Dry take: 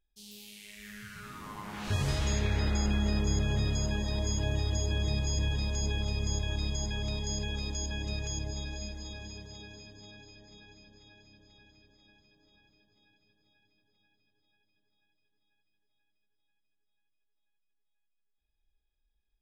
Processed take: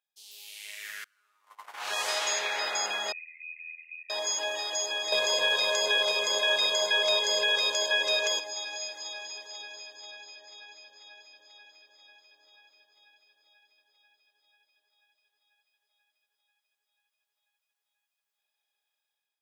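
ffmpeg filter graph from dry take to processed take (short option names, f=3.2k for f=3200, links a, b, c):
-filter_complex "[0:a]asettb=1/sr,asplit=3[a][b][c];[a]atrim=end=1.044[d];[b]atrim=start=1.04:end=1.97,asetpts=PTS-STARTPTS,afade=t=in:d=0.004:c=qsin,afade=t=out:st=0.926:d=0.004:c=qsin,aeval=exprs='if(lt(val(0),0),0.708*val(0),val(0))':c=same,agate=range=-31dB:threshold=-42dB:ratio=16:release=100:detection=peak[e];[c]atrim=start=1.966[f];[d][e]acrossfade=d=0.004:c1=hsin:c2=qsin[g];[g][f]acrossfade=d=0.004:c1=qsin:c2=hsin,asettb=1/sr,asplit=3[h][i][j];[h]atrim=end=3.124[k];[i]atrim=start=3.12:end=4.1,asetpts=PTS-STARTPTS,afade=t=in:d=0.004:c=qsin,afade=t=out:st=0.976:d=0.004:c=qsin,asuperpass=centerf=2300:order=20:qfactor=3,aeval=exprs='val(0)*sin(2*PI*41*n/s)':c=same[l];[j]atrim=start=4.096[m];[k][l]acrossfade=d=0.004:c1=hsin:c2=qsin[n];[n][m]acrossfade=d=0.004:c1=qsin:c2=hsin,asettb=1/sr,asplit=3[o][p][q];[o]atrim=end=5.124[r];[p]atrim=start=5.12:end=8.4,asetpts=PTS-STARTPTS,afade=t=in:d=0.004:c=qsin,afade=t=out:st=3.276:d=0.004:c=qsin,lowshelf=f=310:g=9.5,aecho=1:1:1.9:0.78,atrim=end_sample=144648,acontrast=51[s];[q]atrim=start=8.396[t];[r][s]acrossfade=d=0.004:c1=hsin:c2=qsin[u];[u][t]acrossfade=d=0.004:c1=qsin:c2=hsin,highpass=f=600:w=0.5412,highpass=f=600:w=1.3066,dynaudnorm=f=210:g=5:m=8.5dB"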